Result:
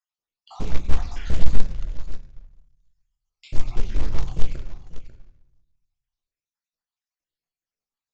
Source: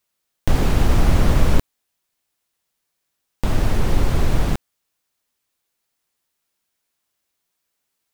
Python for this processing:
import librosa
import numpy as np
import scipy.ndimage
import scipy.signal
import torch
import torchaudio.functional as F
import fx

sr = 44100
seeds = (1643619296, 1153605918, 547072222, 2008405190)

y = fx.spec_dropout(x, sr, seeds[0], share_pct=69)
y = y + 10.0 ** (-14.5 / 20.0) * np.pad(y, (int(543 * sr / 1000.0), 0))[:len(y)]
y = fx.dereverb_blind(y, sr, rt60_s=1.2)
y = fx.high_shelf(y, sr, hz=3400.0, db=7.0, at=(1.08, 3.55))
y = fx.room_shoebox(y, sr, seeds[1], volume_m3=190.0, walls='mixed', distance_m=0.76)
y = fx.quant_float(y, sr, bits=2)
y = scipy.signal.sosfilt(scipy.signal.butter(16, 7200.0, 'lowpass', fs=sr, output='sos'), y)
y = fx.low_shelf(y, sr, hz=62.0, db=10.5)
y = fx.doppler_dist(y, sr, depth_ms=0.68)
y = y * librosa.db_to_amplitude(-11.5)